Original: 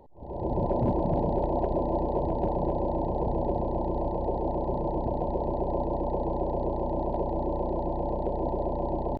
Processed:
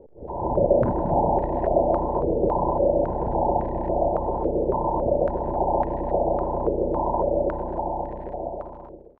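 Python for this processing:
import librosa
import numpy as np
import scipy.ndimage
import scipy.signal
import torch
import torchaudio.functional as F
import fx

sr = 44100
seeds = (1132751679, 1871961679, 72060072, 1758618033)

y = fx.fade_out_tail(x, sr, length_s=2.01)
y = fx.dmg_crackle(y, sr, seeds[0], per_s=68.0, level_db=-38.0)
y = fx.filter_held_lowpass(y, sr, hz=3.6, low_hz=470.0, high_hz=1800.0)
y = y * 10.0 ** (1.0 / 20.0)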